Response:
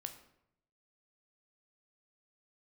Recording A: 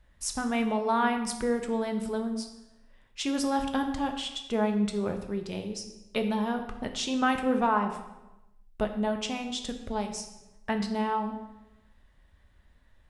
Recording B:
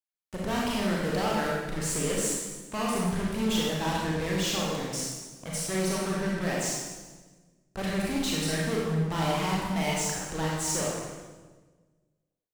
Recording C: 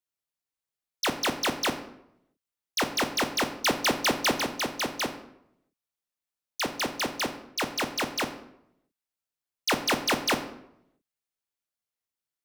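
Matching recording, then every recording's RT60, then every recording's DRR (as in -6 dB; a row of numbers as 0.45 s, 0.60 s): C; 1.0 s, 1.3 s, 0.75 s; 4.5 dB, -5.0 dB, 6.5 dB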